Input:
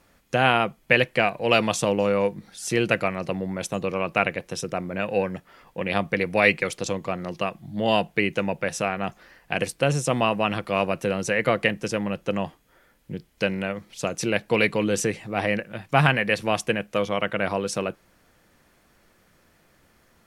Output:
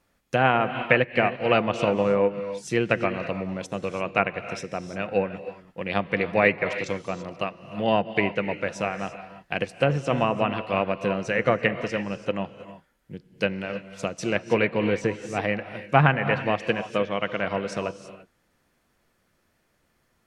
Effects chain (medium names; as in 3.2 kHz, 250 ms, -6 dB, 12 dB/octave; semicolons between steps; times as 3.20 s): gated-style reverb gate 360 ms rising, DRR 7.5 dB; low-pass that closes with the level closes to 2 kHz, closed at -16.5 dBFS; upward expansion 1.5:1, over -38 dBFS; trim +2 dB